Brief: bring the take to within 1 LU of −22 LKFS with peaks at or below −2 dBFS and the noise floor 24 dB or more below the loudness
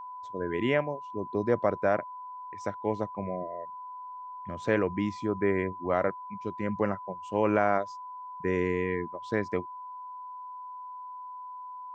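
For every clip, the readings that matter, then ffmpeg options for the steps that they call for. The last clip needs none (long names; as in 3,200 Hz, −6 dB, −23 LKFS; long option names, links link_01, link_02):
interfering tone 1,000 Hz; level of the tone −39 dBFS; integrated loudness −30.5 LKFS; sample peak −10.5 dBFS; target loudness −22.0 LKFS
→ -af "bandreject=frequency=1000:width=30"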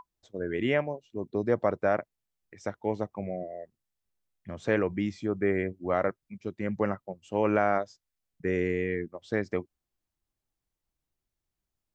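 interfering tone none found; integrated loudness −30.5 LKFS; sample peak −11.0 dBFS; target loudness −22.0 LKFS
→ -af "volume=8.5dB"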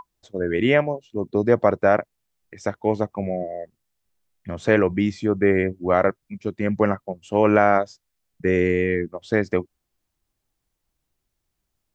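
integrated loudness −22.0 LKFS; sample peak −2.5 dBFS; background noise floor −79 dBFS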